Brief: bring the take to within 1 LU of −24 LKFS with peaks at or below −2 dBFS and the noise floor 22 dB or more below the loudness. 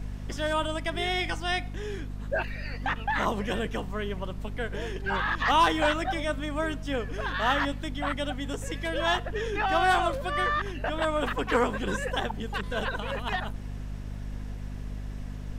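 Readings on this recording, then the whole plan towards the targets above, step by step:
mains hum 50 Hz; hum harmonics up to 250 Hz; level of the hum −34 dBFS; background noise floor −37 dBFS; target noise floor −52 dBFS; integrated loudness −29.5 LKFS; sample peak −13.0 dBFS; target loudness −24.0 LKFS
→ hum removal 50 Hz, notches 5
noise reduction from a noise print 15 dB
level +5.5 dB

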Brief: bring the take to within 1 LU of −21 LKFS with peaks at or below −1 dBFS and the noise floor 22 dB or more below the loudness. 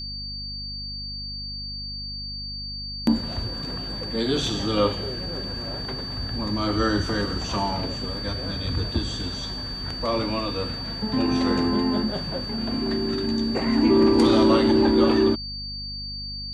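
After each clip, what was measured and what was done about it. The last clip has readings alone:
mains hum 50 Hz; hum harmonics up to 250 Hz; level of the hum −35 dBFS; interfering tone 4,600 Hz; level of the tone −32 dBFS; integrated loudness −24.5 LKFS; sample peak −7.5 dBFS; target loudness −21.0 LKFS
→ mains-hum notches 50/100/150/200/250 Hz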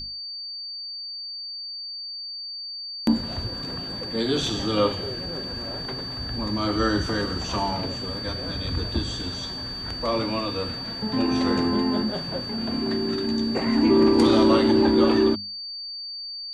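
mains hum none found; interfering tone 4,600 Hz; level of the tone −32 dBFS
→ notch filter 4,600 Hz, Q 30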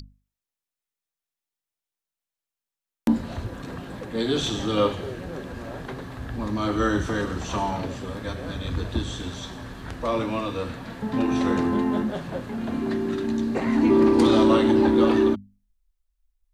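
interfering tone none found; integrated loudness −24.0 LKFS; sample peak −7.5 dBFS; target loudness −21.0 LKFS
→ level +3 dB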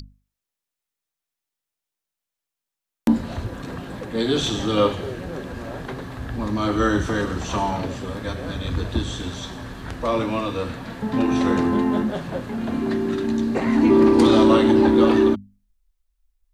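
integrated loudness −21.0 LKFS; sample peak −4.5 dBFS; background noise floor −86 dBFS

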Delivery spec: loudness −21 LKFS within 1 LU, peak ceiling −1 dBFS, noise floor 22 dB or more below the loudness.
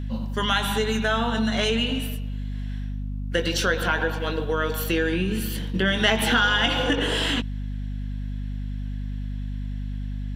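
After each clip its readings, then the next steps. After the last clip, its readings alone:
mains hum 50 Hz; hum harmonics up to 250 Hz; level of the hum −27 dBFS; integrated loudness −25.0 LKFS; sample peak −5.5 dBFS; target loudness −21.0 LKFS
→ mains-hum notches 50/100/150/200/250 Hz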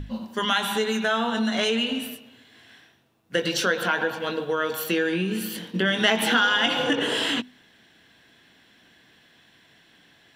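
mains hum none found; integrated loudness −24.0 LKFS; sample peak −6.0 dBFS; target loudness −21.0 LKFS
→ level +3 dB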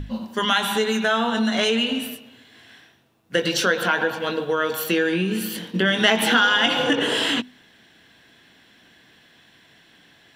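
integrated loudness −21.0 LKFS; sample peak −3.0 dBFS; background noise floor −55 dBFS

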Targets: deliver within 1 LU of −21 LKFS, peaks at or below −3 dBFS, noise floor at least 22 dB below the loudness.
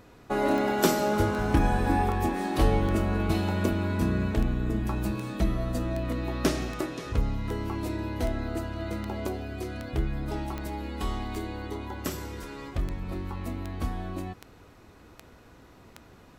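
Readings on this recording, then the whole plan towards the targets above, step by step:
number of clicks 21; integrated loudness −29.5 LKFS; sample peak −7.5 dBFS; target loudness −21.0 LKFS
→ click removal
level +8.5 dB
brickwall limiter −3 dBFS

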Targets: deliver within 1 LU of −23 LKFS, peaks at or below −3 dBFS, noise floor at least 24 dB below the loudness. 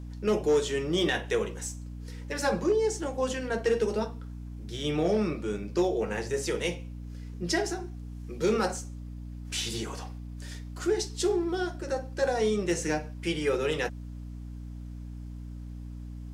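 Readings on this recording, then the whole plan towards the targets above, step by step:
share of clipped samples 0.2%; peaks flattened at −18.0 dBFS; mains hum 60 Hz; hum harmonics up to 300 Hz; level of the hum −37 dBFS; integrated loudness −29.5 LKFS; sample peak −18.0 dBFS; target loudness −23.0 LKFS
→ clipped peaks rebuilt −18 dBFS
hum removal 60 Hz, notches 5
level +6.5 dB

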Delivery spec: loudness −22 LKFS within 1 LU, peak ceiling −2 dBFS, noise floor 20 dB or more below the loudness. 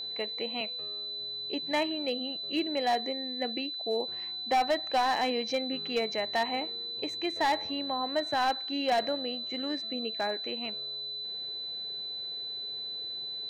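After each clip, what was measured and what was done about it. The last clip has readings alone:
share of clipped samples 0.9%; peaks flattened at −21.5 dBFS; interfering tone 4,000 Hz; level of the tone −35 dBFS; integrated loudness −31.5 LKFS; sample peak −21.5 dBFS; target loudness −22.0 LKFS
→ clipped peaks rebuilt −21.5 dBFS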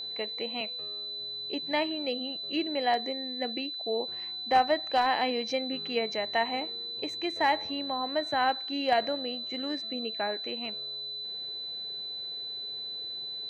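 share of clipped samples 0.0%; interfering tone 4,000 Hz; level of the tone −35 dBFS
→ notch filter 4,000 Hz, Q 30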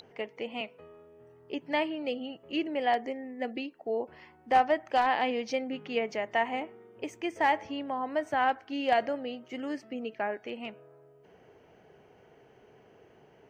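interfering tone none found; integrated loudness −31.5 LKFS; sample peak −12.0 dBFS; target loudness −22.0 LKFS
→ level +9.5 dB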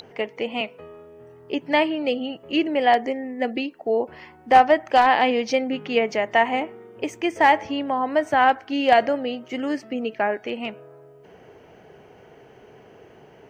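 integrated loudness −22.0 LKFS; sample peak −2.5 dBFS; background noise floor −50 dBFS

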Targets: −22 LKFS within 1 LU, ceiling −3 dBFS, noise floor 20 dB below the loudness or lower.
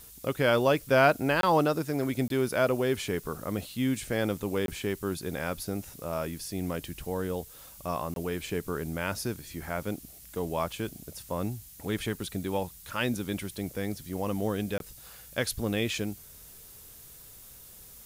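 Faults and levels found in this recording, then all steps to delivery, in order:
number of dropouts 5; longest dropout 22 ms; background noise floor −50 dBFS; target noise floor −51 dBFS; integrated loudness −30.5 LKFS; sample peak −10.0 dBFS; target loudness −22.0 LKFS
→ repair the gap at 0:01.41/0:02.28/0:04.66/0:08.14/0:14.78, 22 ms
broadband denoise 6 dB, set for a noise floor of −50 dBFS
level +8.5 dB
brickwall limiter −3 dBFS

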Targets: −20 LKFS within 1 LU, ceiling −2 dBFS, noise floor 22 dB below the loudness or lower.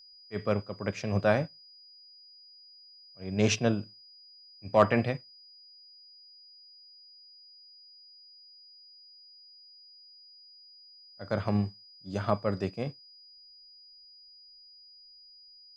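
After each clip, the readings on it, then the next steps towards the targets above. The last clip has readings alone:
interfering tone 4,900 Hz; level of the tone −52 dBFS; integrated loudness −30.0 LKFS; sample peak −8.5 dBFS; target loudness −20.0 LKFS
→ notch filter 4,900 Hz, Q 30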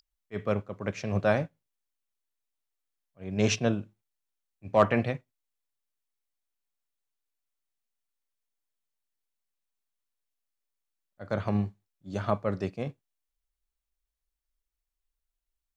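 interfering tone none found; integrated loudness −30.0 LKFS; sample peak −8.5 dBFS; target loudness −20.0 LKFS
→ level +10 dB
brickwall limiter −2 dBFS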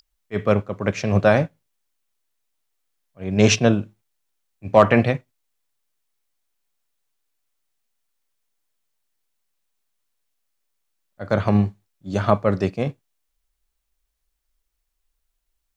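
integrated loudness −20.5 LKFS; sample peak −2.0 dBFS; background noise floor −76 dBFS

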